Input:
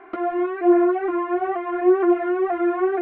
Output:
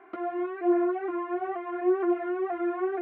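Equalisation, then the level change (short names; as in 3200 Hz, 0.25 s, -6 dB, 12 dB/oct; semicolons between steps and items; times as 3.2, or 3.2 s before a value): HPF 64 Hz; -8.0 dB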